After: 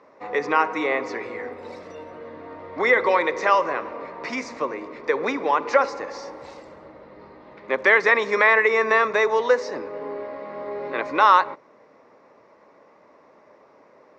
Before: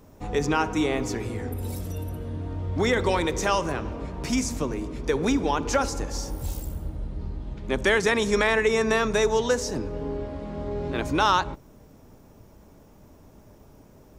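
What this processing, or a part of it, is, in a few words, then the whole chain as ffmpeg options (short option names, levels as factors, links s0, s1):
phone earpiece: -af "highpass=420,equalizer=f=530:t=q:w=4:g=7,equalizer=f=1100:t=q:w=4:g=9,equalizer=f=2000:t=q:w=4:g=10,equalizer=f=3200:t=q:w=4:g=-9,lowpass=f=4400:w=0.5412,lowpass=f=4400:w=1.3066,volume=1.19"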